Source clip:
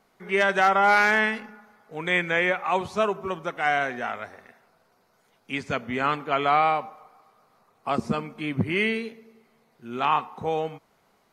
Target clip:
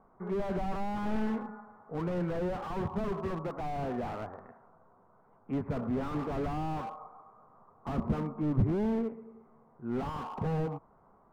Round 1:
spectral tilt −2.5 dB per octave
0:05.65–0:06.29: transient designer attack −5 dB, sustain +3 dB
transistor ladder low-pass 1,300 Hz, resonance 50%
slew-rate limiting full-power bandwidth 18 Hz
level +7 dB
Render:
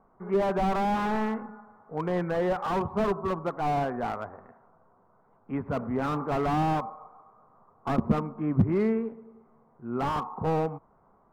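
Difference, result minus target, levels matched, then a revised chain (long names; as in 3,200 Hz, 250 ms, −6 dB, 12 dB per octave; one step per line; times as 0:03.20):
slew-rate limiting: distortion −8 dB
spectral tilt −2.5 dB per octave
0:05.65–0:06.29: transient designer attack −5 dB, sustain +3 dB
transistor ladder low-pass 1,300 Hz, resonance 50%
slew-rate limiting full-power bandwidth 5.5 Hz
level +7 dB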